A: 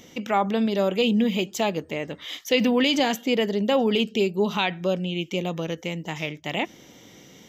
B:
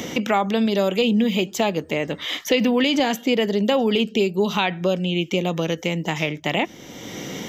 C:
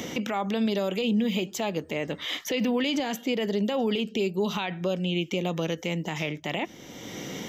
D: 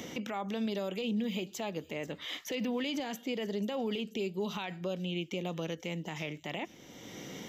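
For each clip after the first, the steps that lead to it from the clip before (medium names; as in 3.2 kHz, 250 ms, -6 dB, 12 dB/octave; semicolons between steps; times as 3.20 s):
three bands compressed up and down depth 70%; trim +2.5 dB
peak limiter -13.5 dBFS, peak gain reduction 7.5 dB; trim -4.5 dB
feedback echo behind a high-pass 488 ms, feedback 49%, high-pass 5.5 kHz, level -13 dB; trim -8 dB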